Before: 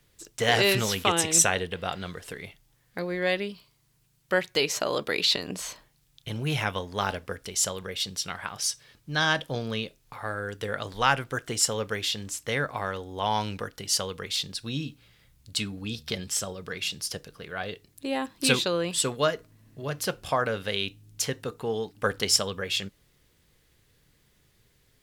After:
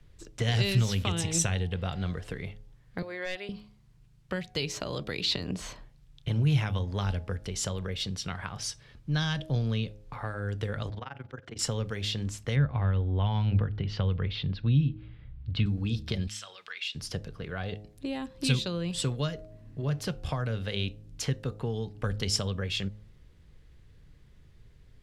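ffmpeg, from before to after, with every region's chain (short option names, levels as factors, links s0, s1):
-filter_complex "[0:a]asettb=1/sr,asplit=3[s0][s1][s2];[s0]atrim=end=3.024[s3];[s1]atrim=start=3.02:end=3.49,asetpts=PTS-STARTPTS,afade=t=in:d=0.004:c=qsin,afade=t=out:st=0.466:d=0.004:c=qsin,highpass=620,bandreject=f=6000:w=5.6,asoftclip=type=hard:threshold=0.1[s4];[s2]atrim=start=3.486[s5];[s3][s4]acrossfade=d=0.004:c1=hsin:c2=qsin[s6];[s6][s5]acrossfade=d=0.004:c1=qsin:c2=hsin,asettb=1/sr,asplit=3[s7][s8][s9];[s7]atrim=end=10.894[s10];[s8]atrim=start=10.89:end=11.59,asetpts=PTS-STARTPTS,afade=t=in:d=0.004:c=qsin,afade=t=out:st=0.696:d=0.004:c=qsin,highpass=120,lowpass=5100,acompressor=threshold=0.0126:ratio=3:attack=3.2:release=140:knee=1:detection=peak,tremolo=f=22:d=0.947[s11];[s9]atrim=start=11.586[s12];[s10][s11]acrossfade=d=0.004:c1=hsin:c2=qsin[s13];[s13][s12]acrossfade=d=0.004:c1=qsin:c2=hsin,asettb=1/sr,asplit=3[s14][s15][s16];[s14]atrim=end=12.564[s17];[s15]atrim=start=12.56:end=15.66,asetpts=PTS-STARTPTS,afade=t=in:d=0.004:c=qsin,afade=t=out:st=3.096:d=0.004:c=qsin,lowpass=f=3500:w=0.5412,lowpass=f=3500:w=1.3066,equalizer=f=92:t=o:w=2.2:g=7[s18];[s16]atrim=start=15.656[s19];[s17][s18]acrossfade=d=0.004:c1=hsin:c2=qsin[s20];[s20][s19]acrossfade=d=0.004:c1=qsin:c2=hsin,asettb=1/sr,asplit=3[s21][s22][s23];[s21]atrim=end=16.274[s24];[s22]atrim=start=16.27:end=16.95,asetpts=PTS-STARTPTS,afade=t=in:d=0.004:c=qsin,afade=t=out:st=0.676:d=0.004:c=qsin,highpass=1300,equalizer=f=3100:w=0.83:g=9,acompressor=threshold=0.00708:ratio=1.5:attack=3.2:release=140:knee=1:detection=peak[s25];[s23]atrim=start=16.946[s26];[s24][s25]acrossfade=d=0.004:c1=hsin:c2=qsin[s27];[s27][s26]acrossfade=d=0.004:c1=qsin:c2=hsin,aemphasis=mode=reproduction:type=bsi,bandreject=f=104.9:t=h:w=4,bandreject=f=209.8:t=h:w=4,bandreject=f=314.7:t=h:w=4,bandreject=f=419.6:t=h:w=4,bandreject=f=524.5:t=h:w=4,bandreject=f=629.4:t=h:w=4,bandreject=f=734.3:t=h:w=4,bandreject=f=839.2:t=h:w=4,acrossover=split=180|3000[s28][s29][s30];[s29]acompressor=threshold=0.02:ratio=6[s31];[s28][s31][s30]amix=inputs=3:normalize=0"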